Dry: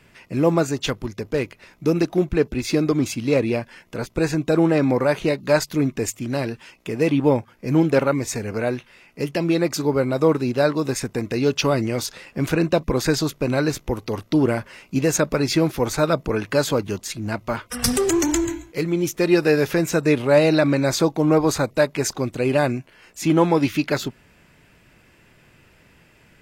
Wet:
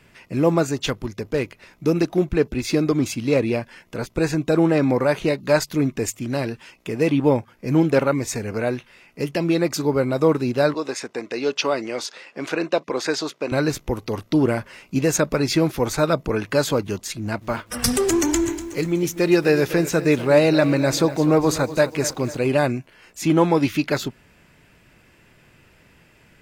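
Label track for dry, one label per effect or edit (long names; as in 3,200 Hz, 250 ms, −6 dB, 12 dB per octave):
10.740000	13.520000	band-pass filter 380–6,600 Hz
17.170000	22.470000	feedback echo at a low word length 245 ms, feedback 55%, word length 7 bits, level −14.5 dB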